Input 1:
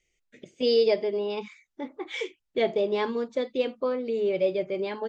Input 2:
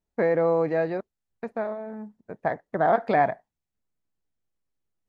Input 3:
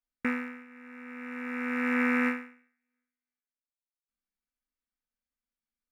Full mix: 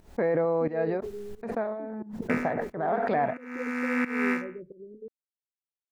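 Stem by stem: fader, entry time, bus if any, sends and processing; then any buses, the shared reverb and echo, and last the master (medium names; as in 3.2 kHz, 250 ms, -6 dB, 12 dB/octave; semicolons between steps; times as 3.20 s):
-13.0 dB, 0.00 s, no send, Chebyshev low-pass 540 Hz, order 8; tilt EQ -2.5 dB/octave
-1.0 dB, 0.00 s, no send, treble shelf 3.5 kHz -8 dB; peak limiter -16.5 dBFS, peak gain reduction 7 dB; swell ahead of each attack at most 20 dB/s
+1.0 dB, 2.05 s, no send, local Wiener filter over 9 samples; gate -50 dBFS, range -26 dB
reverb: none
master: volume shaper 89 bpm, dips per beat 1, -17 dB, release 283 ms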